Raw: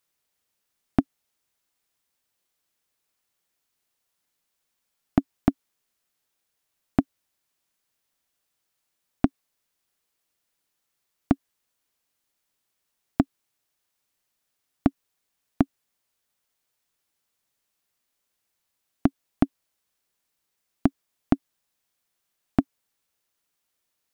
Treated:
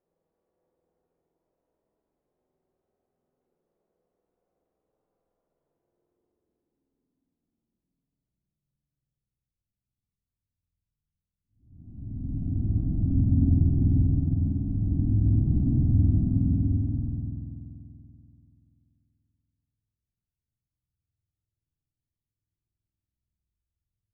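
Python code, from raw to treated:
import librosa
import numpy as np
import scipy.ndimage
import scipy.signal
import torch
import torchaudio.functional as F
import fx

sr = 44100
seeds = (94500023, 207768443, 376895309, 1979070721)

y = fx.paulstretch(x, sr, seeds[0], factor=7.6, window_s=0.5, from_s=3.41)
y = fx.rev_spring(y, sr, rt60_s=2.8, pass_ms=(48,), chirp_ms=65, drr_db=-1.0)
y = fx.filter_sweep_lowpass(y, sr, from_hz=520.0, to_hz=100.0, start_s=5.78, end_s=9.59, q=1.9)
y = y * 10.0 ** (7.0 / 20.0)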